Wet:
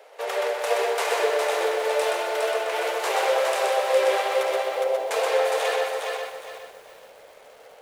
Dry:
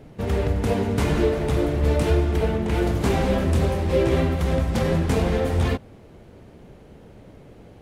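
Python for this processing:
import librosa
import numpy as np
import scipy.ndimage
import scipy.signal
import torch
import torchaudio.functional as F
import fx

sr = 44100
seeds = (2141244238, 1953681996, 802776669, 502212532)

y = fx.cheby2_lowpass(x, sr, hz=2000.0, order=4, stop_db=50, at=(4.43, 5.11))
y = fx.echo_feedback(y, sr, ms=125, feedback_pct=30, wet_db=-3.5)
y = fx.rider(y, sr, range_db=3, speed_s=2.0)
y = scipy.signal.sosfilt(scipy.signal.butter(8, 480.0, 'highpass', fs=sr, output='sos'), y)
y = fx.echo_crushed(y, sr, ms=411, feedback_pct=35, bits=9, wet_db=-3.5)
y = y * librosa.db_to_amplitude(2.5)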